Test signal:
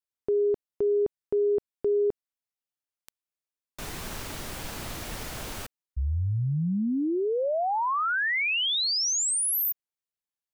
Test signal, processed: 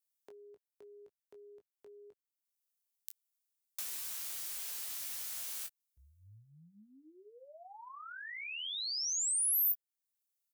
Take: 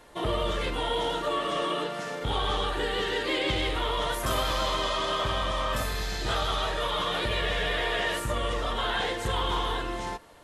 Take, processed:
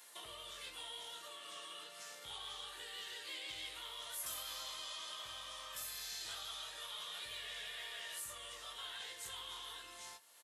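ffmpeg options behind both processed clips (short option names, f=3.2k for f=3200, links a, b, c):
-filter_complex "[0:a]acrossover=split=130[a][b];[b]acompressor=threshold=-44dB:ratio=2.5:attack=23:release=720:knee=2.83:detection=peak[c];[a][c]amix=inputs=2:normalize=0,aderivative,aecho=1:1:19|29:0.473|0.178,volume=4dB"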